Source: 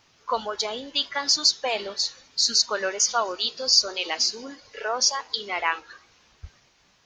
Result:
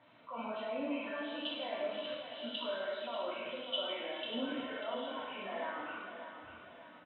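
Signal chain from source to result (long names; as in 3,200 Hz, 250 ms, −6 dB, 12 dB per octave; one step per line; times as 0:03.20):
hearing-aid frequency compression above 1,300 Hz 1.5 to 1
source passing by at 0:03.17, 10 m/s, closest 10 metres
high-pass filter 97 Hz 24 dB per octave
low-shelf EQ 210 Hz −10.5 dB
reversed playback
downward compressor 16 to 1, threshold −38 dBFS, peak gain reduction 22 dB
reversed playback
transient designer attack −1 dB, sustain +4 dB
output level in coarse steps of 19 dB
Bessel low-pass filter 2,000 Hz, order 2
notch comb filter 410 Hz
hollow resonant body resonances 240/620 Hz, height 10 dB, ringing for 30 ms
on a send: repeating echo 592 ms, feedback 45%, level −9.5 dB
on the sum: reverb whose tail is shaped and stops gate 420 ms falling, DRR −5.5 dB
level +10 dB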